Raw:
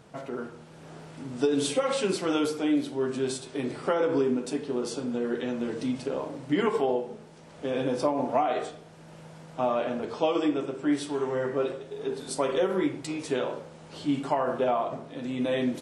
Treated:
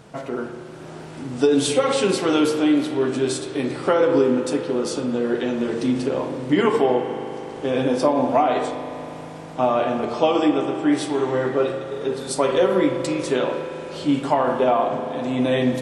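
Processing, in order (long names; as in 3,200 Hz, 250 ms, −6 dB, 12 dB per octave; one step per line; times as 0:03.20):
spring reverb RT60 3.9 s, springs 39 ms, chirp 20 ms, DRR 6.5 dB
level +7 dB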